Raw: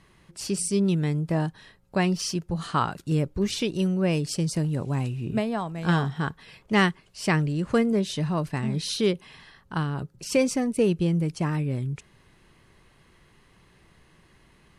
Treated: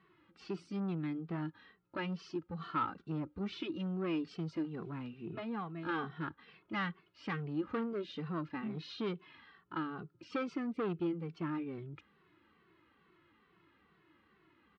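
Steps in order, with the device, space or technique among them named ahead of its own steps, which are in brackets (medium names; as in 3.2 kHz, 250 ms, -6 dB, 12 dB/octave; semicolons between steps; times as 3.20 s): 2.08–3.36 s: dynamic bell 2.7 kHz, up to -5 dB, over -42 dBFS, Q 1; barber-pole flanger into a guitar amplifier (endless flanger 2.2 ms -2.3 Hz; saturation -25 dBFS, distortion -10 dB; cabinet simulation 110–3600 Hz, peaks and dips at 130 Hz -8 dB, 320 Hz +9 dB, 610 Hz -6 dB, 1.3 kHz +9 dB); trim -7.5 dB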